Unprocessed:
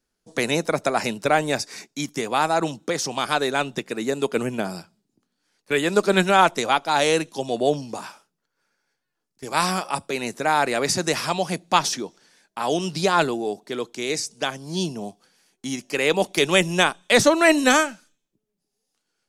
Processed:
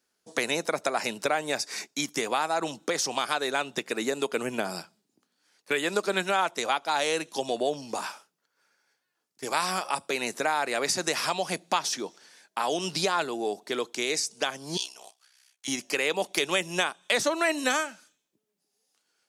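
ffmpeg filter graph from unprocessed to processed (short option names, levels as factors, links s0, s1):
-filter_complex "[0:a]asettb=1/sr,asplit=3[s0][s1][s2];[s0]atrim=end=14.774[s3];[s1]atrim=start=14.77:end=15.68,asetpts=PTS-STARTPTS,afade=t=in:d=0.004:c=qsin,afade=t=out:st=0.906:d=0.004:c=qsin,highpass=1400,aeval=exprs='val(0)*sin(2*PI*32*n/s)':c=same[s4];[s2]atrim=start=15.676[s5];[s3][s4]acrossfade=d=0.004:c1=hsin:c2=qsin[s6];[s6][s5]acrossfade=d=0.004:c1=qsin:c2=hsin,highpass=f=480:p=1,acompressor=threshold=0.0355:ratio=3,volume=1.5"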